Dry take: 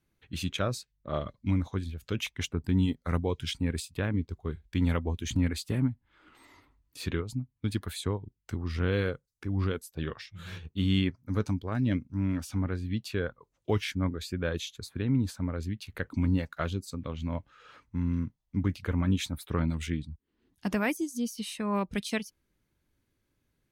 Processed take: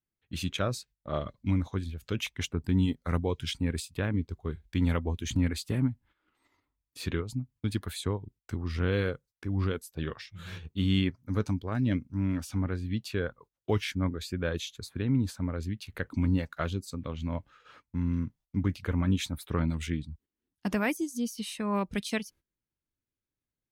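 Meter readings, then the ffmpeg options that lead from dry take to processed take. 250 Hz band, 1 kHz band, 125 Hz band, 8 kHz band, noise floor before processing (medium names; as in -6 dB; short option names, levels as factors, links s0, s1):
0.0 dB, 0.0 dB, 0.0 dB, 0.0 dB, -78 dBFS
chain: -af "agate=range=0.141:threshold=0.002:ratio=16:detection=peak"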